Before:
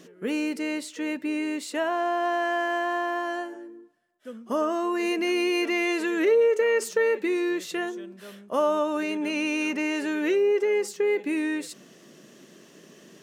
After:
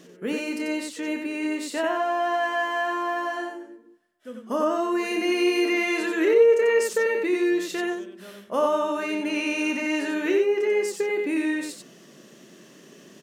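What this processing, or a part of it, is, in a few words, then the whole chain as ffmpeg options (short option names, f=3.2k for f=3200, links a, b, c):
slapback doubling: -filter_complex "[0:a]asplit=3[a][b][c];[b]adelay=28,volume=-9dB[d];[c]adelay=91,volume=-4.5dB[e];[a][d][e]amix=inputs=3:normalize=0"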